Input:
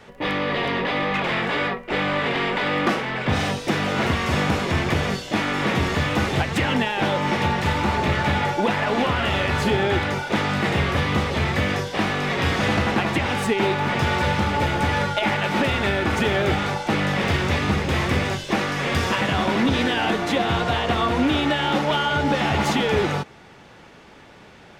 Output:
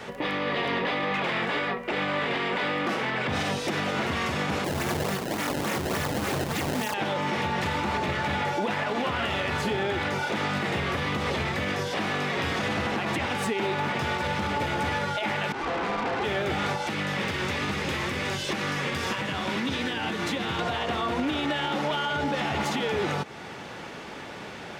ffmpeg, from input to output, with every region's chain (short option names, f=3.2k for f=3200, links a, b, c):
-filter_complex "[0:a]asettb=1/sr,asplit=3[a][b][c];[a]atrim=end=4.644[d];[b]atrim=start=4.64:end=6.94,asetpts=PTS-STARTPTS,afade=t=in:d=0.004:c=qsin,afade=t=out:st=2.296:d=0.004:c=qsin,highpass=61,bandreject=f=60:t=h:w=6,bandreject=f=120:t=h:w=6,bandreject=f=180:t=h:w=6,bandreject=f=240:t=h:w=6,bandreject=f=300:t=h:w=6,bandreject=f=360:t=h:w=6,bandreject=f=420:t=h:w=6,bandreject=f=480:t=h:w=6,acrusher=samples=22:mix=1:aa=0.000001:lfo=1:lforange=35.2:lforate=3.5[e];[c]atrim=start=6.936[f];[d][e]acrossfade=d=0.004:c1=hsin:c2=qsin[g];[g][f]acrossfade=d=0.004:c1=qsin:c2=hsin,asettb=1/sr,asplit=3[h][i][j];[h]atrim=end=15.524[k];[i]atrim=start=15.52:end=16.24,asetpts=PTS-STARTPTS,afade=t=in:d=0.004:c=qsin,afade=t=out:st=0.716:d=0.004:c=qsin,lowpass=1.2k,aeval=exprs='val(0)*sin(2*PI*600*n/s)':c=same,aeval=exprs='(tanh(35.5*val(0)+0.45)-tanh(0.45))/35.5':c=same[l];[j]atrim=start=16.236[m];[k][l]acrossfade=d=0.004:c1=hsin:c2=qsin[n];[n][m]acrossfade=d=0.004:c1=qsin:c2=hsin,asettb=1/sr,asplit=3[o][p][q];[o]atrim=end=16.854[r];[p]atrim=start=16.85:end=20.59,asetpts=PTS-STARTPTS,afade=t=in:d=0.004:c=qsin,afade=t=out:st=3.736:d=0.004:c=qsin,bandreject=f=700:w=14,acrossover=split=200|1500[s][t][u];[s]acompressor=threshold=-36dB:ratio=4[v];[t]acompressor=threshold=-36dB:ratio=4[w];[u]acompressor=threshold=-36dB:ratio=4[x];[v][w][x]amix=inputs=3:normalize=0[y];[q]atrim=start=20.586[z];[r][y]acrossfade=d=0.004:c1=hsin:c2=qsin[aa];[aa][z]acrossfade=d=0.004:c1=qsin:c2=hsin,highpass=f=140:p=1,acompressor=threshold=-36dB:ratio=1.5,alimiter=level_in=3dB:limit=-24dB:level=0:latency=1:release=147,volume=-3dB,volume=8dB"